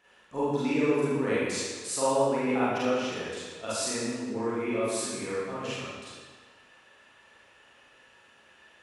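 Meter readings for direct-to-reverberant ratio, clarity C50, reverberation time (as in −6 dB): −10.5 dB, −3.5 dB, 1.5 s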